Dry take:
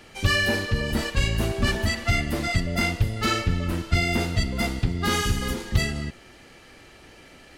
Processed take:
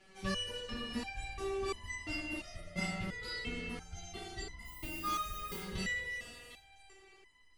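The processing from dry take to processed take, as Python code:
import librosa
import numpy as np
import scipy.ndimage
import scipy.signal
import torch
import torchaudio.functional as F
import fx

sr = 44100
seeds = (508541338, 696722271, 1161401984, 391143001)

p1 = scipy.signal.sosfilt(scipy.signal.butter(6, 11000.0, 'lowpass', fs=sr, output='sos'), x)
p2 = fx.rev_spring(p1, sr, rt60_s=2.7, pass_ms=(52,), chirp_ms=20, drr_db=2.5)
p3 = fx.dmg_noise_colour(p2, sr, seeds[0], colour='violet', level_db=-35.0, at=(4.64, 5.59), fade=0.02)
p4 = p3 + fx.echo_stepped(p3, sr, ms=251, hz=420.0, octaves=1.4, feedback_pct=70, wet_db=-1.0, dry=0)
y = fx.resonator_held(p4, sr, hz=2.9, low_hz=190.0, high_hz=1000.0)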